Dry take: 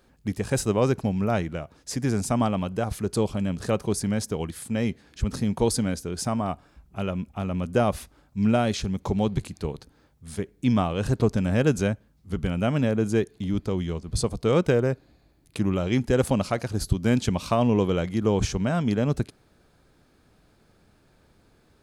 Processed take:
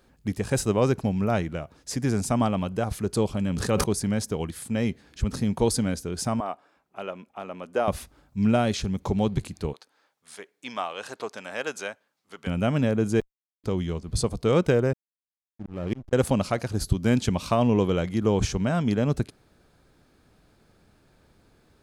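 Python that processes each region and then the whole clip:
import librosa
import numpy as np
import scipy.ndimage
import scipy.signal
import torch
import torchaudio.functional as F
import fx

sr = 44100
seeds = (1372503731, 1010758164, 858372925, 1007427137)

y = fx.chain(x, sr, fx.notch(hz=650.0, q=7.6),
    fx.sustainer(db_per_s=29.0), at=(3.4, 3.84))
y = fx.chain(y, sr, fx.highpass(hz=450.0, slope=12),
    fx.high_shelf(hz=3500.0, db=-9.5), at=(6.4, 7.88))
y = fx.chain(y, sr, fx.highpass(hz=760.0, slope=12),
    fx.high_shelf(hz=8800.0, db=-7.0), at=(9.73, 12.47))
y = fx.chain(y, sr, fx.cvsd(bps=16000),
    fx.highpass(hz=910.0, slope=12),
    fx.schmitt(flips_db=-30.0), at=(13.2, 13.64))
y = fx.chain(y, sr, fx.high_shelf(hz=2000.0, db=-8.5),
    fx.auto_swell(attack_ms=247.0),
    fx.backlash(play_db=-35.0), at=(14.93, 16.13))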